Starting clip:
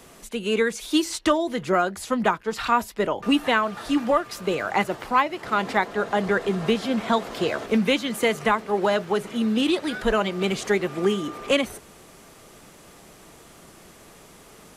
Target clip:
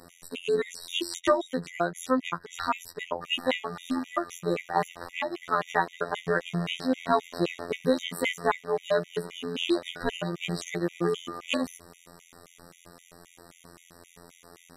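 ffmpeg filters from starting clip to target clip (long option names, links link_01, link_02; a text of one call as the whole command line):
ffmpeg -i in.wav -af "afftfilt=real='hypot(re,im)*cos(PI*b)':imag='0':win_size=2048:overlap=0.75,afftfilt=real='re*gt(sin(2*PI*3.8*pts/sr)*(1-2*mod(floor(b*sr/1024/1900),2)),0)':imag='im*gt(sin(2*PI*3.8*pts/sr)*(1-2*mod(floor(b*sr/1024/1900),2)),0)':win_size=1024:overlap=0.75,volume=1.5dB" out.wav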